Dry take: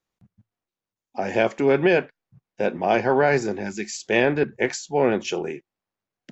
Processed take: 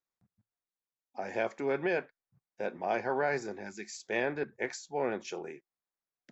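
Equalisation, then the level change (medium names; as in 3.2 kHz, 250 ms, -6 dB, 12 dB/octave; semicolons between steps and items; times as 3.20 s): bass shelf 390 Hz -9 dB; peaking EQ 2.9 kHz -9 dB 0.34 oct; treble shelf 5.8 kHz -5 dB; -8.5 dB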